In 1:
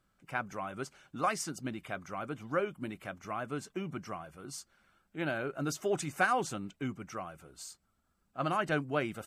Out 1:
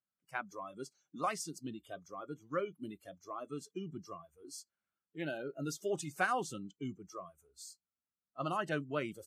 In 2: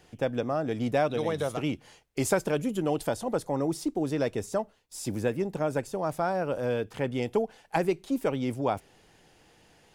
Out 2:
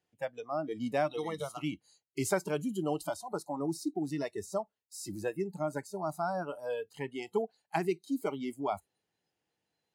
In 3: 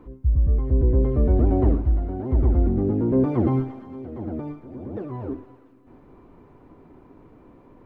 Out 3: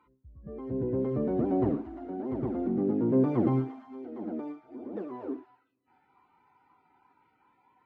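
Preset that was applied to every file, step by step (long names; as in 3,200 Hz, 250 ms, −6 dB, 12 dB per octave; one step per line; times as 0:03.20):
noise reduction from a noise print of the clip's start 21 dB
high-pass filter 93 Hz 12 dB per octave
level −4 dB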